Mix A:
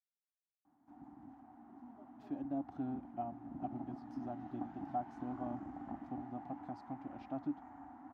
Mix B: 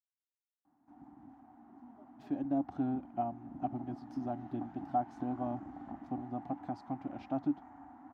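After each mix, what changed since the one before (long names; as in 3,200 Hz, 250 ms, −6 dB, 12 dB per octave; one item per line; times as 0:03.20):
speech +6.5 dB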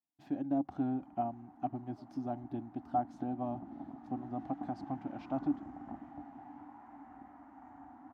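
speech: entry −2.00 s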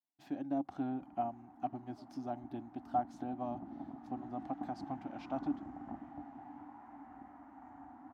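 speech: add spectral tilt +2 dB per octave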